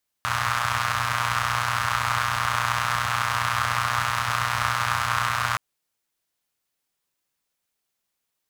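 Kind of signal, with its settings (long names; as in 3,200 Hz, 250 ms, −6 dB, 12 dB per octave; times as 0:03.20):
pulse-train model of a four-cylinder engine, steady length 5.32 s, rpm 3,600, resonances 100/1,200 Hz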